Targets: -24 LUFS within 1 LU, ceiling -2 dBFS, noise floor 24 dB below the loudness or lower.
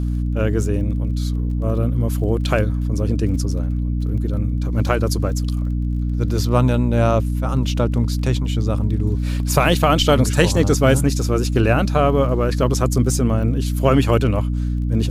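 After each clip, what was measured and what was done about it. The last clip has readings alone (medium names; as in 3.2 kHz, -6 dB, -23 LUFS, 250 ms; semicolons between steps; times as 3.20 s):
tick rate 28 per s; hum 60 Hz; highest harmonic 300 Hz; hum level -18 dBFS; loudness -19.0 LUFS; peak level -1.5 dBFS; loudness target -24.0 LUFS
-> de-click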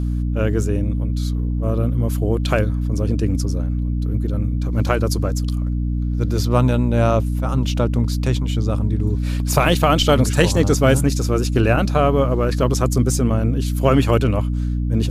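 tick rate 0.13 per s; hum 60 Hz; highest harmonic 300 Hz; hum level -18 dBFS
-> de-hum 60 Hz, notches 5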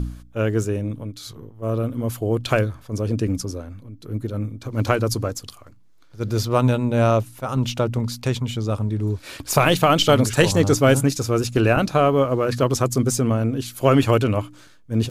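hum not found; loudness -21.0 LUFS; peak level -2.5 dBFS; loudness target -24.0 LUFS
-> trim -3 dB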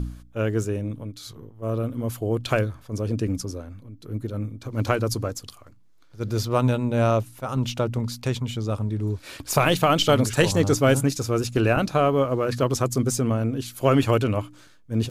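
loudness -24.0 LUFS; peak level -5.5 dBFS; noise floor -51 dBFS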